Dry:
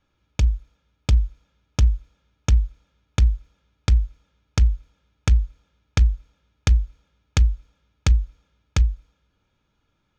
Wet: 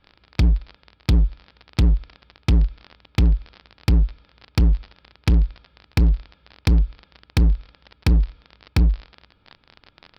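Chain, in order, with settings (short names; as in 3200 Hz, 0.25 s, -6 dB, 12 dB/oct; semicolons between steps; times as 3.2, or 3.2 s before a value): crackle 34/s -32 dBFS; downsampling 11025 Hz; overloaded stage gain 21 dB; gain +8.5 dB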